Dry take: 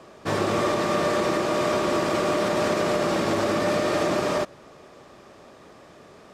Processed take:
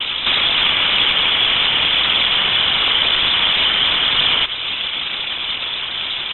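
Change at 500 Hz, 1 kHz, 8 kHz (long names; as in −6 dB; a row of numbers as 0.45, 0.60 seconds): −10.0 dB, +1.5 dB, below −40 dB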